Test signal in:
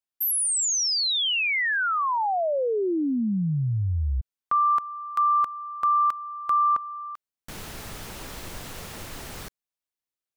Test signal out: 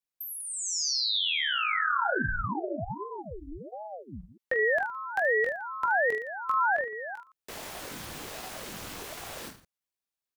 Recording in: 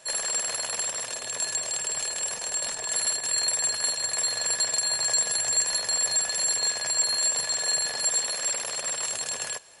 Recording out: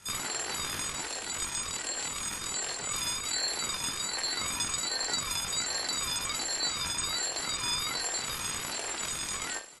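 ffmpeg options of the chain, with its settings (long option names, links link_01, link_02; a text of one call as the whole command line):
ffmpeg -i in.wav -filter_complex "[0:a]aecho=1:1:20|45|76.25|115.3|164.1:0.631|0.398|0.251|0.158|0.1,acrossover=split=540|1100|5700[link_01][link_02][link_03][link_04];[link_01]acompressor=threshold=-40dB:ratio=4[link_05];[link_02]acompressor=threshold=-30dB:ratio=4[link_06];[link_03]acompressor=threshold=-24dB:ratio=4[link_07];[link_04]acompressor=threshold=-38dB:ratio=4[link_08];[link_05][link_06][link_07][link_08]amix=inputs=4:normalize=0,aeval=exprs='val(0)*sin(2*PI*430*n/s+430*0.75/1.3*sin(2*PI*1.3*n/s))':channel_layout=same" out.wav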